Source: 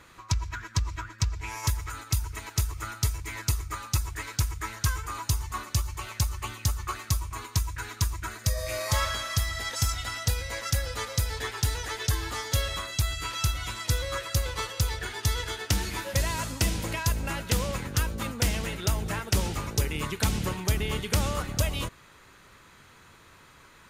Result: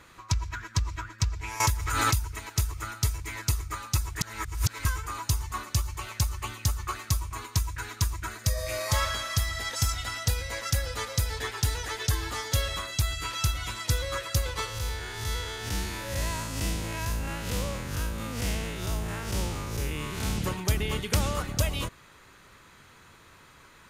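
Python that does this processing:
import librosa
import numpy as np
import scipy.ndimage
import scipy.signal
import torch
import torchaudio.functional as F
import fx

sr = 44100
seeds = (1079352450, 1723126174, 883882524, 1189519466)

y = fx.pre_swell(x, sr, db_per_s=30.0, at=(1.6, 2.21))
y = fx.spec_blur(y, sr, span_ms=135.0, at=(14.66, 20.36), fade=0.02)
y = fx.edit(y, sr, fx.reverse_span(start_s=4.21, length_s=0.64), tone=tone)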